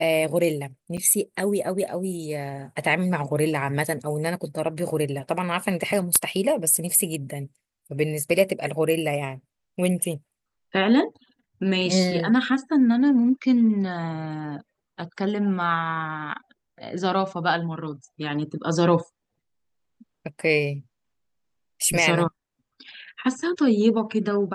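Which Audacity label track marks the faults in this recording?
0.970000	0.980000	gap 6.5 ms

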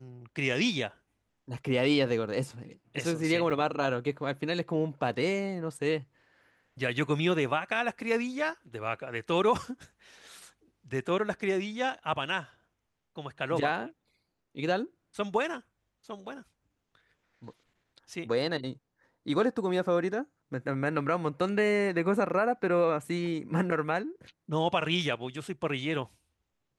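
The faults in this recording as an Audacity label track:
3.500000	3.510000	gap 6 ms

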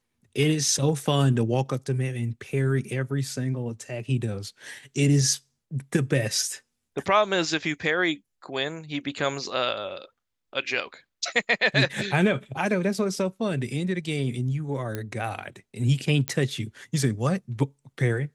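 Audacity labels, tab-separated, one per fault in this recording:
14.950000	14.950000	pop -16 dBFS
16.280000	16.280000	pop -10 dBFS

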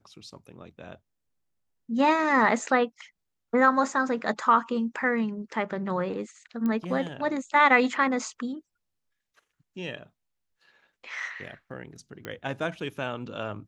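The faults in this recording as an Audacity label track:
6.660000	6.660000	pop -19 dBFS
12.250000	12.250000	pop -21 dBFS

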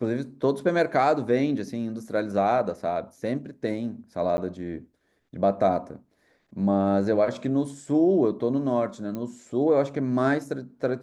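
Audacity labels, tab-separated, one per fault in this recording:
4.370000	4.380000	gap 10 ms
9.150000	9.150000	pop -21 dBFS

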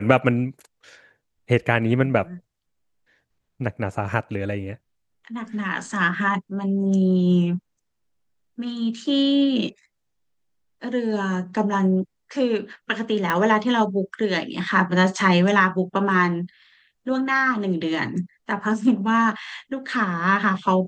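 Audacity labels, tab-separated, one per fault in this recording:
13.300000	13.300000	pop -9 dBFS

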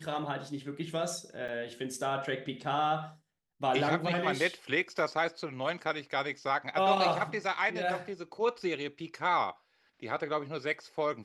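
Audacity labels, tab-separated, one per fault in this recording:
1.480000	1.490000	gap 5.9 ms

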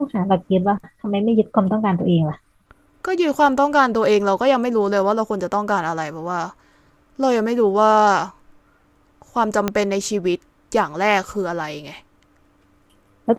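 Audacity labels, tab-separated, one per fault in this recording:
9.680000	9.680000	pop -6 dBFS

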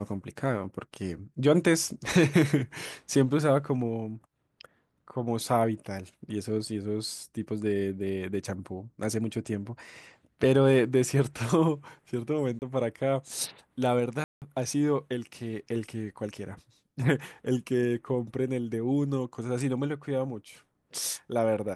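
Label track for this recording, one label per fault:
12.590000	12.620000	gap 29 ms
14.240000	14.420000	gap 0.178 s

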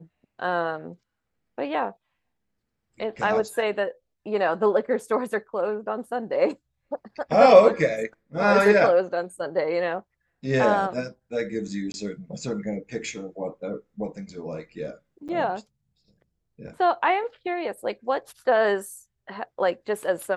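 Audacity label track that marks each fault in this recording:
11.920000	11.940000	gap 21 ms
15.280000	15.290000	gap 7.9 ms

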